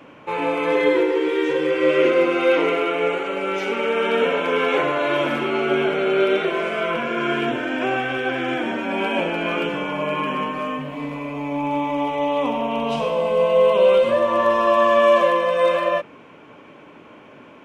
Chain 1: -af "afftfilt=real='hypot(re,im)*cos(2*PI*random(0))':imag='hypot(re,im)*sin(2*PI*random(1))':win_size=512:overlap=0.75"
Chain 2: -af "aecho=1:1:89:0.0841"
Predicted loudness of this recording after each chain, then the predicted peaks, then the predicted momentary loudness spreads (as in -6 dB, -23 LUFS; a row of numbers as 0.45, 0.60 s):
-26.0, -20.0 LUFS; -8.0, -5.5 dBFS; 9, 9 LU